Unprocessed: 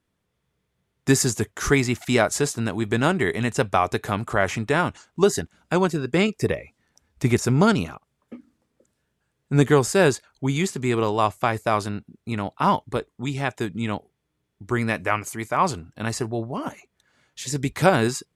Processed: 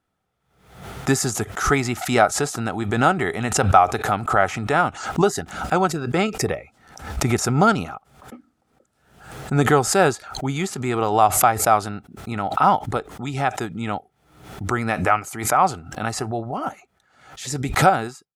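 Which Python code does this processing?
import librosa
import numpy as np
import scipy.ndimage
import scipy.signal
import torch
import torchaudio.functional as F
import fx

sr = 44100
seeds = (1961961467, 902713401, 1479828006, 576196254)

y = fx.fade_out_tail(x, sr, length_s=0.69)
y = fx.small_body(y, sr, hz=(770.0, 1300.0), ring_ms=25, db=13)
y = fx.pre_swell(y, sr, db_per_s=85.0)
y = y * 10.0 ** (-2.0 / 20.0)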